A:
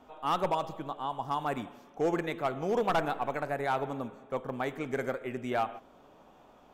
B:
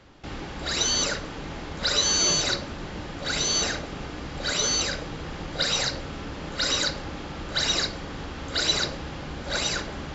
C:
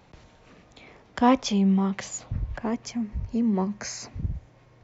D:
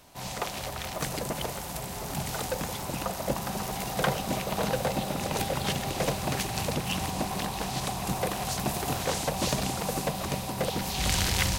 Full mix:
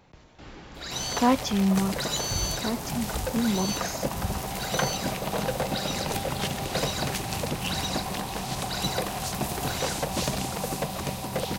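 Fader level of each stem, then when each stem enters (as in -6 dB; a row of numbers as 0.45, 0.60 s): off, -9.0 dB, -2.0 dB, 0.0 dB; off, 0.15 s, 0.00 s, 0.75 s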